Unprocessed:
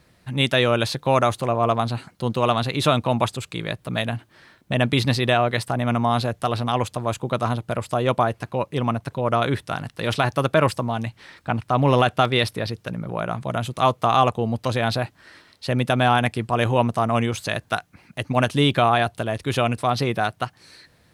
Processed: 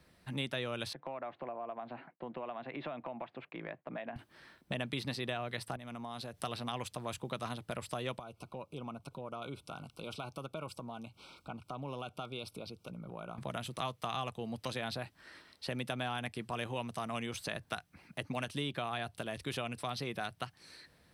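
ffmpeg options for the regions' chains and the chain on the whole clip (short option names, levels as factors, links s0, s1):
-filter_complex "[0:a]asettb=1/sr,asplit=3[s0][s1][s2];[s0]atrim=end=0.934[s3];[s1]atrim=start=0.93:end=4.16,asetpts=PTS-STARTPTS,afade=t=in:d=0.004:c=qsin,afade=t=out:st=3.226:d=0.004:c=qsin,highpass=f=180:w=0.5412,highpass=f=180:w=1.3066,equalizer=f=200:t=q:w=4:g=-10,equalizer=f=430:t=q:w=4:g=-5,equalizer=f=680:t=q:w=4:g=5,equalizer=f=1300:t=q:w=4:g=-5,lowpass=f=2200:w=0.5412,lowpass=f=2200:w=1.3066,acompressor=threshold=0.0282:ratio=2.5:attack=3.2:release=140:knee=1:detection=peak,agate=range=0.0224:threshold=0.00282:ratio=3:release=100:detection=peak[s4];[s2]atrim=start=4.156[s5];[s3][s4]acrossfade=d=0.004:c1=hsin:c2=qsin[s6];[s6][s5]acrossfade=d=0.004:c1=qsin:c2=hsin,asettb=1/sr,asplit=3[s7][s8][s9];[s7]atrim=end=5.764[s10];[s8]atrim=start=5.76:end=6.43,asetpts=PTS-STARTPTS,afade=t=in:d=0.004:c=qsin,afade=t=out:st=0.666:d=0.004:c=qsin,acompressor=threshold=0.0158:ratio=3:attack=3.2:release=140:knee=1:detection=peak,adynamicequalizer=threshold=0.00224:dfrequency=2900:dqfactor=0.7:tfrequency=2900:tqfactor=0.7:attack=5:release=100:ratio=0.375:range=3:mode=boostabove:tftype=highshelf[s11];[s9]atrim=start=6.426[s12];[s10][s11]acrossfade=d=0.004:c1=hsin:c2=qsin[s13];[s13][s12]acrossfade=d=0.004:c1=qsin:c2=hsin,asettb=1/sr,asplit=3[s14][s15][s16];[s14]atrim=end=8.194[s17];[s15]atrim=start=8.19:end=13.38,asetpts=PTS-STARTPTS,afade=t=in:d=0.004:c=qsin,afade=t=out:st=5.186:d=0.004:c=qsin,asuperstop=centerf=1800:order=20:qfactor=2.7,acompressor=threshold=0.00891:ratio=2:attack=3.2:release=140:knee=1:detection=peak[s18];[s16]atrim=start=13.376[s19];[s17][s18]acrossfade=d=0.004:c1=hsin:c2=qsin[s20];[s20][s19]acrossfade=d=0.004:c1=qsin:c2=hsin,equalizer=f=110:w=7.8:g=-13.5,bandreject=f=6800:w=8.9,acrossover=split=160|2000[s21][s22][s23];[s21]acompressor=threshold=0.01:ratio=4[s24];[s22]acompressor=threshold=0.0251:ratio=4[s25];[s23]acompressor=threshold=0.02:ratio=4[s26];[s24][s25][s26]amix=inputs=3:normalize=0,volume=0.447"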